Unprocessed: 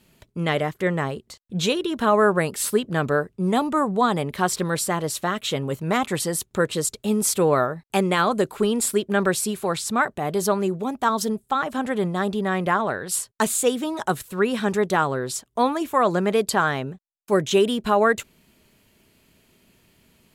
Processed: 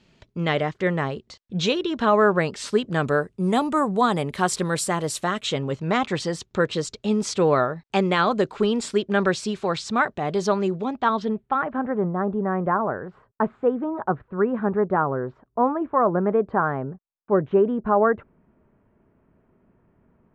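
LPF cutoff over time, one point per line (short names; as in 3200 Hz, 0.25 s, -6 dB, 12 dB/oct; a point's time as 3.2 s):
LPF 24 dB/oct
2.67 s 6000 Hz
3.1 s 10000 Hz
5.23 s 10000 Hz
5.68 s 5900 Hz
10.74 s 5900 Hz
11.57 s 2300 Hz
11.94 s 1400 Hz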